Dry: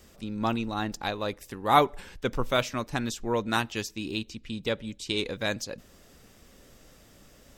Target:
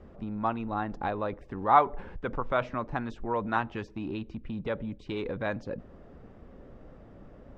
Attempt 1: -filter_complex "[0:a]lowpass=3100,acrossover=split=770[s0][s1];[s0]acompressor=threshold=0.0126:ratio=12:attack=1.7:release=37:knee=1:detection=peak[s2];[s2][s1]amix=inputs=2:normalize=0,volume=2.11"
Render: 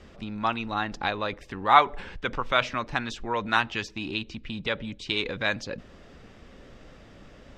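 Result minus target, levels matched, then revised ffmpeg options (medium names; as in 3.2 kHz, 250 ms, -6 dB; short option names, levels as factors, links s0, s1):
4 kHz band +14.0 dB
-filter_complex "[0:a]lowpass=1000,acrossover=split=770[s0][s1];[s0]acompressor=threshold=0.0126:ratio=12:attack=1.7:release=37:knee=1:detection=peak[s2];[s2][s1]amix=inputs=2:normalize=0,volume=2.11"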